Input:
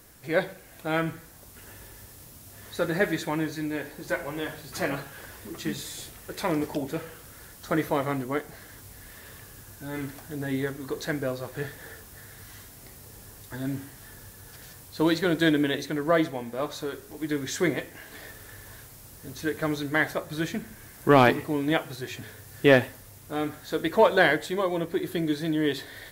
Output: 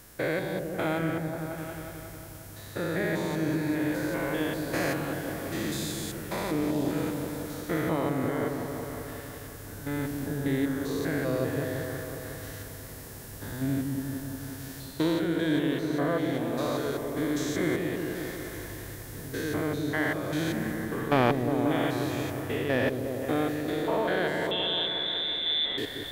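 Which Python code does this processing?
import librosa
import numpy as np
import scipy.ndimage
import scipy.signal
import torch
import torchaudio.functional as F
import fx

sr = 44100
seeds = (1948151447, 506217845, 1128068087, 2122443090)

y = fx.spec_steps(x, sr, hold_ms=200)
y = fx.rider(y, sr, range_db=4, speed_s=0.5)
y = fx.freq_invert(y, sr, carrier_hz=3800, at=(24.51, 25.78))
y = fx.echo_opening(y, sr, ms=180, hz=400, octaves=1, feedback_pct=70, wet_db=-3)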